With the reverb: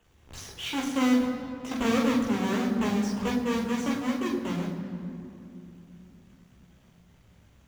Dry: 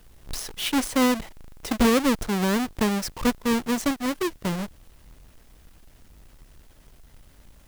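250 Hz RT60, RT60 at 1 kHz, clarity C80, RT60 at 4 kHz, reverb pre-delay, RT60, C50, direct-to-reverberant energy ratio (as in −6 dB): 4.2 s, 2.6 s, 6.5 dB, 1.7 s, 15 ms, 2.8 s, 5.5 dB, −2.5 dB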